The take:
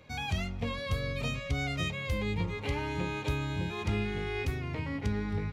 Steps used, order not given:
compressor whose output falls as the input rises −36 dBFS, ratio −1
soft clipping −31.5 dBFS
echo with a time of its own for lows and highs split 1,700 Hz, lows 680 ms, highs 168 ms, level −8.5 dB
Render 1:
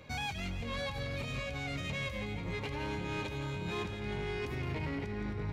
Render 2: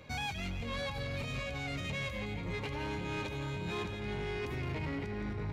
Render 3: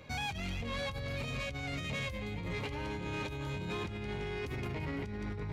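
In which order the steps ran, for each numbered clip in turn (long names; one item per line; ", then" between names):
compressor whose output falls as the input rises, then soft clipping, then echo with a time of its own for lows and highs
compressor whose output falls as the input rises, then echo with a time of its own for lows and highs, then soft clipping
echo with a time of its own for lows and highs, then compressor whose output falls as the input rises, then soft clipping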